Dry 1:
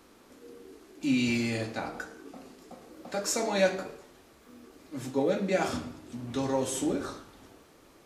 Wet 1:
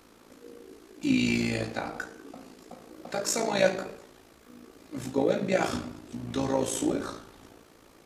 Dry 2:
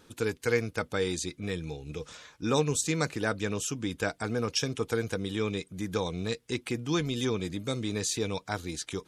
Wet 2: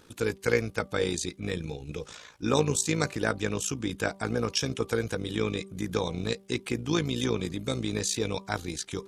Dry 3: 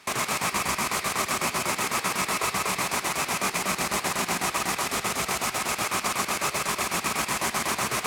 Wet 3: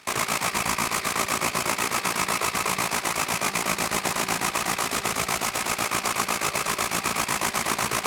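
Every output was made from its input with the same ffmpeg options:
-af "tremolo=f=56:d=0.667,bandreject=f=194.9:t=h:w=4,bandreject=f=389.8:t=h:w=4,bandreject=f=584.7:t=h:w=4,bandreject=f=779.6:t=h:w=4,bandreject=f=974.5:t=h:w=4,bandreject=f=1169.4:t=h:w=4,volume=1.68"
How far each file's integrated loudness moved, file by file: +1.5 LU, +1.5 LU, +1.5 LU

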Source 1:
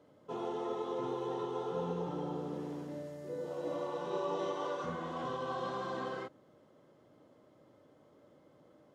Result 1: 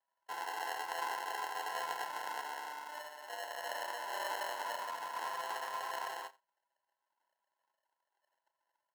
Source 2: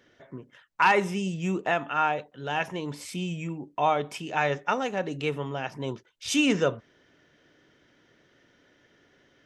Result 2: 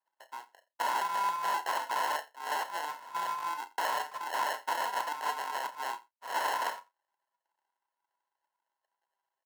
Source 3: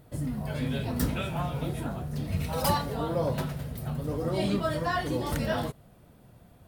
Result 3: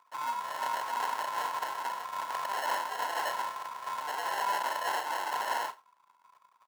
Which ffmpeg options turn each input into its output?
-filter_complex "[0:a]anlmdn=0.01,lowpass=f=2500:w=0.5412,lowpass=f=2500:w=1.3066,acrusher=bits=7:mode=log:mix=0:aa=0.000001,crystalizer=i=7:c=0,acrusher=samples=37:mix=1:aa=0.000001,aeval=exprs='(mod(11.2*val(0)+1,2)-1)/11.2':c=same,highpass=f=1000:t=q:w=7.9,asplit=2[s0][s1];[s1]adelay=33,volume=0.251[s2];[s0][s2]amix=inputs=2:normalize=0,asplit=2[s3][s4];[s4]aecho=0:1:86:0.0794[s5];[s3][s5]amix=inputs=2:normalize=0,volume=0.631"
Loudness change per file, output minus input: -1.5 LU, -6.0 LU, -3.0 LU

